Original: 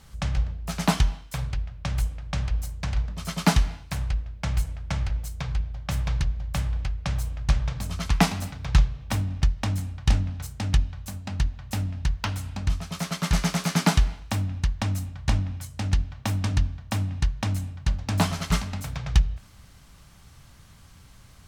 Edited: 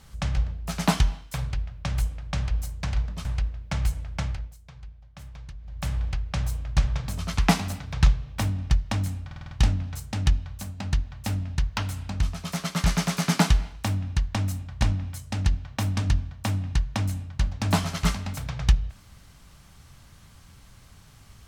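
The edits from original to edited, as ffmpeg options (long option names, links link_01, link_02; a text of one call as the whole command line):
ffmpeg -i in.wav -filter_complex "[0:a]asplit=9[link_01][link_02][link_03][link_04][link_05][link_06][link_07][link_08][link_09];[link_01]atrim=end=3.252[link_10];[link_02]atrim=start=3.968:end=5.27,asetpts=PTS-STARTPTS,afade=type=out:start_time=0.922:duration=0.38:silence=0.158489[link_11];[link_03]atrim=start=5.27:end=6.3,asetpts=PTS-STARTPTS,volume=-16dB[link_12];[link_04]atrim=start=6.3:end=10.032,asetpts=PTS-STARTPTS,afade=type=in:duration=0.38:silence=0.158489[link_13];[link_05]atrim=start=9.978:end=10.032[link_14];[link_06]atrim=start=9.978:end=10.032[link_15];[link_07]atrim=start=9.978:end=10.032[link_16];[link_08]atrim=start=9.978:end=10.032[link_17];[link_09]atrim=start=9.978[link_18];[link_11][link_12][link_13]concat=n=3:v=0:a=1[link_19];[link_10][link_19]acrossfade=duration=0.004:curve1=hsin:curve2=hsin[link_20];[link_20][link_14]acrossfade=duration=0.004:curve1=hsin:curve2=hsin[link_21];[link_21][link_15]acrossfade=duration=0.004:curve1=hsin:curve2=hsin[link_22];[link_22][link_16]acrossfade=duration=0.004:curve1=hsin:curve2=hsin[link_23];[link_23][link_17]acrossfade=duration=0.004:curve1=hsin:curve2=hsin[link_24];[link_24][link_18]acrossfade=duration=0.004:curve1=hsin:curve2=hsin" out.wav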